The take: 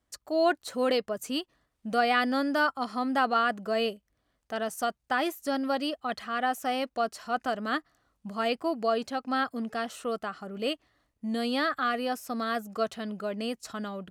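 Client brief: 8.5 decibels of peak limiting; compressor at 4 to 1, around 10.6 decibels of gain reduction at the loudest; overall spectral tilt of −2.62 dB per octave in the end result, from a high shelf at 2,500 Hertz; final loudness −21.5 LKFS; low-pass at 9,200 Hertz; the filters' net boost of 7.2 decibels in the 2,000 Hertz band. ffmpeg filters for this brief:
ffmpeg -i in.wav -af "lowpass=9200,equalizer=frequency=2000:width_type=o:gain=6,highshelf=frequency=2500:gain=9,acompressor=threshold=-29dB:ratio=4,volume=13.5dB,alimiter=limit=-10.5dB:level=0:latency=1" out.wav

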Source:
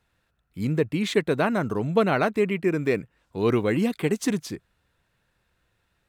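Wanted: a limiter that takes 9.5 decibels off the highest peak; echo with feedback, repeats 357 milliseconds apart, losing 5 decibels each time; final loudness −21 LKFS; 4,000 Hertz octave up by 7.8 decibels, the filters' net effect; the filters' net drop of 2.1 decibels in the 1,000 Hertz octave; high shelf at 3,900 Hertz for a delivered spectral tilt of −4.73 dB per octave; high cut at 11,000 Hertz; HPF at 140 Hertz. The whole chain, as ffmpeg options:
ffmpeg -i in.wav -af "highpass=140,lowpass=11000,equalizer=frequency=1000:width_type=o:gain=-4,highshelf=frequency=3900:gain=7.5,equalizer=frequency=4000:width_type=o:gain=5.5,alimiter=limit=-17dB:level=0:latency=1,aecho=1:1:357|714|1071|1428|1785|2142|2499:0.562|0.315|0.176|0.0988|0.0553|0.031|0.0173,volume=6.5dB" out.wav

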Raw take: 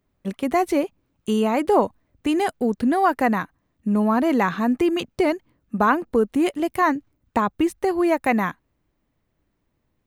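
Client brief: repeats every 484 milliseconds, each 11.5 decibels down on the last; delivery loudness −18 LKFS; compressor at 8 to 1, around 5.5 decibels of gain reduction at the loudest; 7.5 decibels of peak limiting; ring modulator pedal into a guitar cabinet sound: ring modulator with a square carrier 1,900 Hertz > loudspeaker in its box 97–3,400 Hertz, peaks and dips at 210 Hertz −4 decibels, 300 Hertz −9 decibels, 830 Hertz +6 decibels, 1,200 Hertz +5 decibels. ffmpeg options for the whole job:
ffmpeg -i in.wav -af "acompressor=threshold=-19dB:ratio=8,alimiter=limit=-16.5dB:level=0:latency=1,aecho=1:1:484|968|1452:0.266|0.0718|0.0194,aeval=exprs='val(0)*sgn(sin(2*PI*1900*n/s))':channel_layout=same,highpass=97,equalizer=frequency=210:width_type=q:width=4:gain=-4,equalizer=frequency=300:width_type=q:width=4:gain=-9,equalizer=frequency=830:width_type=q:width=4:gain=6,equalizer=frequency=1200:width_type=q:width=4:gain=5,lowpass=frequency=3400:width=0.5412,lowpass=frequency=3400:width=1.3066,volume=6dB" out.wav

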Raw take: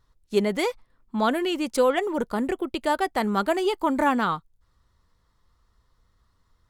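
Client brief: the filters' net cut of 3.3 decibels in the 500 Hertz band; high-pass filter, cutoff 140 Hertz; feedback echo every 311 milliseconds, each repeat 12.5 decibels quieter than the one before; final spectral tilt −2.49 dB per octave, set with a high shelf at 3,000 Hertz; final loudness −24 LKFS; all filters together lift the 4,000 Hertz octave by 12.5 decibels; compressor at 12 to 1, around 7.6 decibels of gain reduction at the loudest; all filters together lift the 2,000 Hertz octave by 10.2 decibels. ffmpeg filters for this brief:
ffmpeg -i in.wav -af "highpass=140,equalizer=frequency=500:width_type=o:gain=-5,equalizer=frequency=2000:width_type=o:gain=9,highshelf=frequency=3000:gain=6,equalizer=frequency=4000:width_type=o:gain=8.5,acompressor=threshold=-21dB:ratio=12,aecho=1:1:311|622|933:0.237|0.0569|0.0137,volume=2dB" out.wav

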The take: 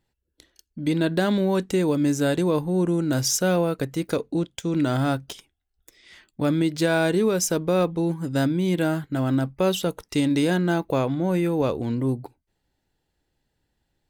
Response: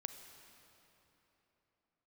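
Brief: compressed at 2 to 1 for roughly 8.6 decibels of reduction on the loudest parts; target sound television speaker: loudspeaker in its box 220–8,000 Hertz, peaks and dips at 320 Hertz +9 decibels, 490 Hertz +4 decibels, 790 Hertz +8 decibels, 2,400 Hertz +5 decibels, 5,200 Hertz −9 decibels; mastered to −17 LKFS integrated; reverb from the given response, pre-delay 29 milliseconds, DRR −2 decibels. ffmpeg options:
-filter_complex "[0:a]acompressor=threshold=-34dB:ratio=2,asplit=2[link_01][link_02];[1:a]atrim=start_sample=2205,adelay=29[link_03];[link_02][link_03]afir=irnorm=-1:irlink=0,volume=4.5dB[link_04];[link_01][link_04]amix=inputs=2:normalize=0,highpass=frequency=220:width=0.5412,highpass=frequency=220:width=1.3066,equalizer=frequency=320:width_type=q:width=4:gain=9,equalizer=frequency=490:width_type=q:width=4:gain=4,equalizer=frequency=790:width_type=q:width=4:gain=8,equalizer=frequency=2400:width_type=q:width=4:gain=5,equalizer=frequency=5200:width_type=q:width=4:gain=-9,lowpass=frequency=8000:width=0.5412,lowpass=frequency=8000:width=1.3066,volume=7dB"

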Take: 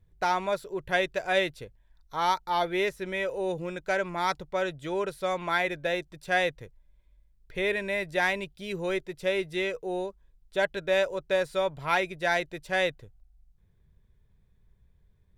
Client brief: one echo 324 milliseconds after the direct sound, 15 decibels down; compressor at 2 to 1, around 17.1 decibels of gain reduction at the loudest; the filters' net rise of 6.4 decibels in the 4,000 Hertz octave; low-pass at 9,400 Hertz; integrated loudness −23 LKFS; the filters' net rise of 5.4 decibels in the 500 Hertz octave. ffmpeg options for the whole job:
ffmpeg -i in.wav -af "lowpass=9400,equalizer=frequency=500:width_type=o:gain=6.5,equalizer=frequency=4000:width_type=o:gain=7.5,acompressor=threshold=-49dB:ratio=2,aecho=1:1:324:0.178,volume=17.5dB" out.wav

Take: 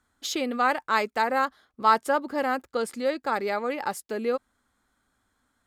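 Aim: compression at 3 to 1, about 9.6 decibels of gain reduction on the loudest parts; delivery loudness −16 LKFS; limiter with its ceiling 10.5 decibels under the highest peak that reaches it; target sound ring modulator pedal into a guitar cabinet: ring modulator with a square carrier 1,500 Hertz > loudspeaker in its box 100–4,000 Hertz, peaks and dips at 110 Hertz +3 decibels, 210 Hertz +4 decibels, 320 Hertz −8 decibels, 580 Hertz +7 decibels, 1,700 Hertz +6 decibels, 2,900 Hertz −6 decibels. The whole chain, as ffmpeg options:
ffmpeg -i in.wav -af "acompressor=threshold=-27dB:ratio=3,alimiter=level_in=3dB:limit=-24dB:level=0:latency=1,volume=-3dB,aeval=exprs='val(0)*sgn(sin(2*PI*1500*n/s))':channel_layout=same,highpass=100,equalizer=frequency=110:width_type=q:width=4:gain=3,equalizer=frequency=210:width_type=q:width=4:gain=4,equalizer=frequency=320:width_type=q:width=4:gain=-8,equalizer=frequency=580:width_type=q:width=4:gain=7,equalizer=frequency=1700:width_type=q:width=4:gain=6,equalizer=frequency=2900:width_type=q:width=4:gain=-6,lowpass=frequency=4000:width=0.5412,lowpass=frequency=4000:width=1.3066,volume=18.5dB" out.wav

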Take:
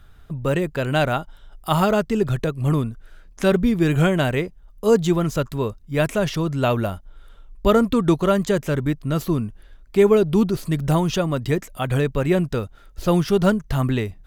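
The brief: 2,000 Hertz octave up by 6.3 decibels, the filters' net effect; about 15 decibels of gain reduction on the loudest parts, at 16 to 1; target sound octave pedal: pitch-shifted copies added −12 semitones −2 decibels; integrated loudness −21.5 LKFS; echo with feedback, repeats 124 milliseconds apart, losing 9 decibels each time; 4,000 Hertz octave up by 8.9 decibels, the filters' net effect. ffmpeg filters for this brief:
ffmpeg -i in.wav -filter_complex "[0:a]equalizer=frequency=2000:width_type=o:gain=6.5,equalizer=frequency=4000:width_type=o:gain=9,acompressor=threshold=-25dB:ratio=16,aecho=1:1:124|248|372|496:0.355|0.124|0.0435|0.0152,asplit=2[link_01][link_02];[link_02]asetrate=22050,aresample=44100,atempo=2,volume=-2dB[link_03];[link_01][link_03]amix=inputs=2:normalize=0,volume=7dB" out.wav

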